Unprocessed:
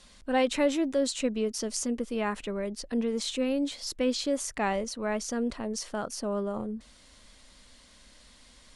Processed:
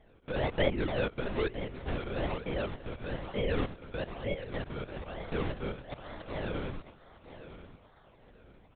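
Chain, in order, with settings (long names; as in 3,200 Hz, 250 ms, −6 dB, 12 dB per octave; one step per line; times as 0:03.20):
spectrum averaged block by block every 100 ms
high-pass filter 310 Hz 6 dB per octave
noise gate −56 dBFS, range −8 dB
volume swells 338 ms
in parallel at +2 dB: downward compressor, threshold −47 dBFS, peak gain reduction 21.5 dB
on the sum: treble cut that deepens with the level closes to 1,800 Hz, closed at −31 dBFS
sample-and-hold swept by an LFO 32×, swing 100% 1.1 Hz
on a send: repeating echo 958 ms, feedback 28%, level −13.5 dB
on the sum: linear-prediction vocoder at 8 kHz whisper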